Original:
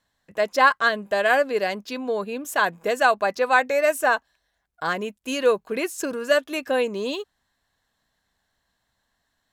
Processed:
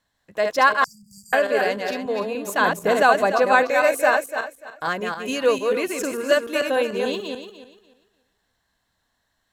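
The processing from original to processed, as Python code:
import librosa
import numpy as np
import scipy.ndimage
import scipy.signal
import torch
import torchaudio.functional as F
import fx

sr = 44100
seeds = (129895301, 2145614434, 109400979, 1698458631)

y = fx.reverse_delay_fb(x, sr, ms=147, feedback_pct=47, wet_db=-4.0)
y = fx.brickwall_bandstop(y, sr, low_hz=190.0, high_hz=4600.0, at=(0.84, 1.33))
y = fx.low_shelf(y, sr, hz=390.0, db=8.5, at=(2.6, 3.63))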